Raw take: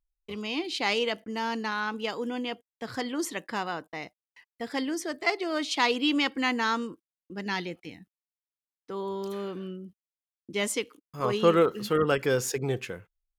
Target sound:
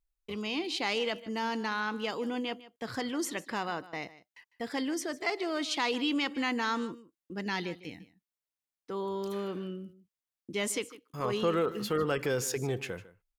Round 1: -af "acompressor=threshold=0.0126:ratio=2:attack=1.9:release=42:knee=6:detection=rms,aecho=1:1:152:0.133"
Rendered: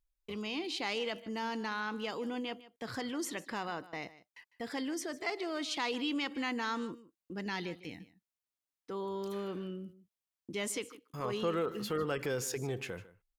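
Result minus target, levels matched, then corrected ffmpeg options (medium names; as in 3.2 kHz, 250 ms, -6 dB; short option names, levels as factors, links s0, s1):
compression: peak gain reduction +4.5 dB
-af "acompressor=threshold=0.0355:ratio=2:attack=1.9:release=42:knee=6:detection=rms,aecho=1:1:152:0.133"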